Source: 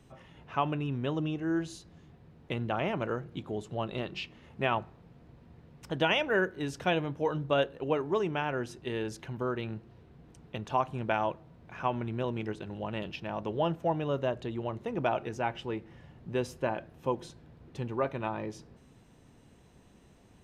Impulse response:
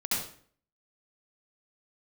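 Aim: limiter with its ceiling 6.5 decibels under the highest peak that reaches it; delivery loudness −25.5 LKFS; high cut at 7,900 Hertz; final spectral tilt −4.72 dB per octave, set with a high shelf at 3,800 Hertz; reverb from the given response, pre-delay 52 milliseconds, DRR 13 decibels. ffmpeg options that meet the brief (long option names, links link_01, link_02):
-filter_complex "[0:a]lowpass=7900,highshelf=frequency=3800:gain=3.5,alimiter=limit=-19.5dB:level=0:latency=1,asplit=2[link_01][link_02];[1:a]atrim=start_sample=2205,adelay=52[link_03];[link_02][link_03]afir=irnorm=-1:irlink=0,volume=-20.5dB[link_04];[link_01][link_04]amix=inputs=2:normalize=0,volume=8.5dB"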